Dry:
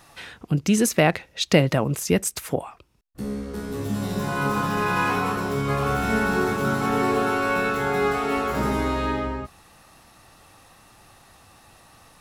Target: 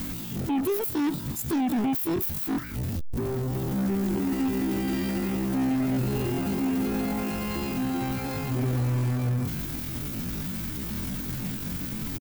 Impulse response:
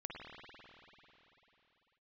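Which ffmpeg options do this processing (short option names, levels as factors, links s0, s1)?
-af "aeval=exprs='val(0)+0.5*0.0376*sgn(val(0))':c=same,firequalizer=gain_entry='entry(140,0);entry(260,-21);entry(1200,-27);entry(11000,3)':delay=0.05:min_phase=1,alimiter=limit=0.0794:level=0:latency=1:release=33,aeval=exprs='0.0794*sin(PI/2*1.58*val(0)/0.0794)':c=same,aeval=exprs='0.0794*(cos(1*acos(clip(val(0)/0.0794,-1,1)))-cos(1*PI/2))+0.0112*(cos(5*acos(clip(val(0)/0.0794,-1,1)))-cos(5*PI/2))':c=same,asetrate=83250,aresample=44100,atempo=0.529732"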